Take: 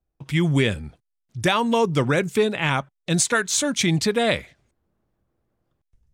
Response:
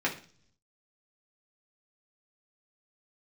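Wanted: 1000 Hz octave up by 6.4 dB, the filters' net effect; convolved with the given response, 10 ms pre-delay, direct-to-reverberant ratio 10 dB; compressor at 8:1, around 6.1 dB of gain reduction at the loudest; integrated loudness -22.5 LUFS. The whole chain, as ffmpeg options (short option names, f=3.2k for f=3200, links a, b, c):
-filter_complex "[0:a]equalizer=f=1k:t=o:g=8,acompressor=threshold=-18dB:ratio=8,asplit=2[a][b];[1:a]atrim=start_sample=2205,adelay=10[c];[b][c]afir=irnorm=-1:irlink=0,volume=-19.5dB[d];[a][d]amix=inputs=2:normalize=0,volume=0.5dB"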